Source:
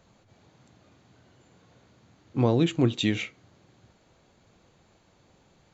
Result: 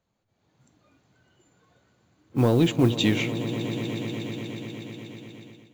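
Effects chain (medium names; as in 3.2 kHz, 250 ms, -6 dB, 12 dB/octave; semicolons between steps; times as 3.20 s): spectral noise reduction 11 dB; modulation noise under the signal 29 dB; echo with a slow build-up 121 ms, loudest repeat 5, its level -17 dB; saturation -12 dBFS, distortion -20 dB; level rider gain up to 10.5 dB; trim -6 dB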